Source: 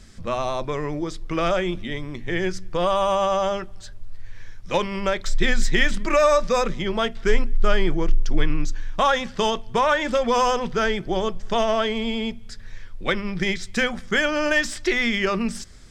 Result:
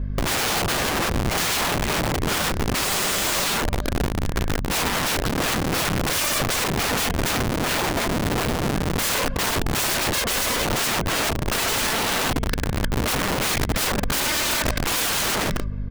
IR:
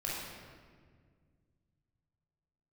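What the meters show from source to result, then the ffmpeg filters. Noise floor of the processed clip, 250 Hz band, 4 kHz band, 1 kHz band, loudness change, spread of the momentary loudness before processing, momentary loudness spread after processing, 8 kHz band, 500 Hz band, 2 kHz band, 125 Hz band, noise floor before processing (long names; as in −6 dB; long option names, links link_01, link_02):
−27 dBFS, 0.0 dB, +5.5 dB, −1.0 dB, +1.0 dB, 9 LU, 3 LU, +13.0 dB, −5.0 dB, +1.0 dB, +6.5 dB, −40 dBFS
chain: -filter_complex "[0:a]lowpass=frequency=2800:poles=1,aecho=1:1:1.9:0.8,acompressor=threshold=-19dB:ratio=2.5,aeval=exprs='val(0)+0.0178*(sin(2*PI*50*n/s)+sin(2*PI*2*50*n/s)/2+sin(2*PI*3*50*n/s)/3+sin(2*PI*4*50*n/s)/4+sin(2*PI*5*50*n/s)/5)':channel_layout=same,adynamicsmooth=sensitivity=2.5:basefreq=1300,asplit=2[link_01][link_02];[link_02]adelay=310,highpass=300,lowpass=3400,asoftclip=type=hard:threshold=-20.5dB,volume=-30dB[link_03];[link_01][link_03]amix=inputs=2:normalize=0,asplit=2[link_04][link_05];[1:a]atrim=start_sample=2205,atrim=end_sample=3528[link_06];[link_05][link_06]afir=irnorm=-1:irlink=0,volume=-26.5dB[link_07];[link_04][link_07]amix=inputs=2:normalize=0,aeval=exprs='(mod(20*val(0)+1,2)-1)/20':channel_layout=same,volume=8dB"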